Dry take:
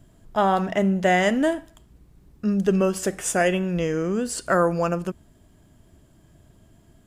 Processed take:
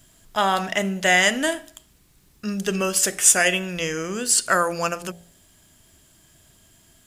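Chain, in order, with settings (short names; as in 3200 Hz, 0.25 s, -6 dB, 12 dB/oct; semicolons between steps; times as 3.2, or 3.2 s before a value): tilt shelf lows -9.5 dB, about 1400 Hz; de-hum 57.35 Hz, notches 15; gain +4 dB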